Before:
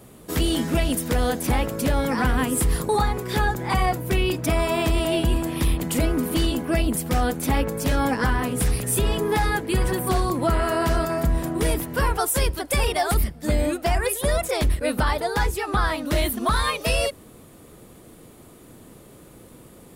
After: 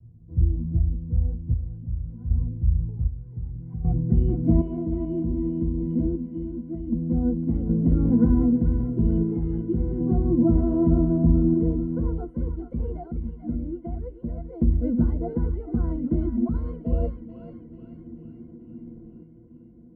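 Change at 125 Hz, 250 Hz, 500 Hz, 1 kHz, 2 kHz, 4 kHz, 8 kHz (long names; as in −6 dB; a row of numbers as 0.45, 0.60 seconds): +1.5 dB, +3.0 dB, −8.0 dB, −20.0 dB, below −30 dB, below −40 dB, below −40 dB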